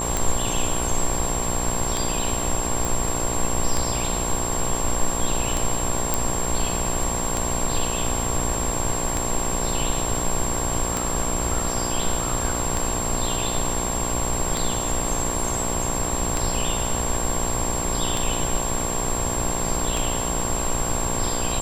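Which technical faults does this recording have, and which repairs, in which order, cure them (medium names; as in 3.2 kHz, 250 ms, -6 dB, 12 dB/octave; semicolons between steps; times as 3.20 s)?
buzz 60 Hz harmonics 19 -29 dBFS
tick 33 1/3 rpm
whine 7.5 kHz -27 dBFS
2.85 s: pop
6.14 s: pop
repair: de-click; de-hum 60 Hz, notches 19; band-stop 7.5 kHz, Q 30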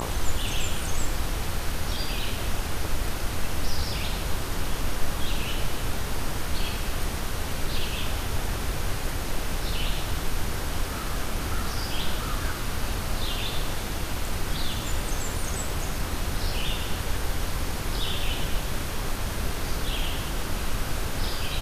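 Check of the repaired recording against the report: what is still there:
nothing left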